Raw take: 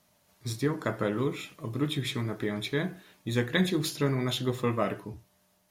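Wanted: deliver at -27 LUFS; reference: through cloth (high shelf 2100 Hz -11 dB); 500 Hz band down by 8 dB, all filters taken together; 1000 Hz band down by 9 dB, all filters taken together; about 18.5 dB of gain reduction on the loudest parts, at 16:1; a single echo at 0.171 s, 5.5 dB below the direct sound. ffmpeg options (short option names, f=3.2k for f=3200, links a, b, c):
-af "equalizer=f=500:t=o:g=-8.5,equalizer=f=1k:t=o:g=-6.5,acompressor=threshold=-42dB:ratio=16,highshelf=f=2.1k:g=-11,aecho=1:1:171:0.531,volume=20.5dB"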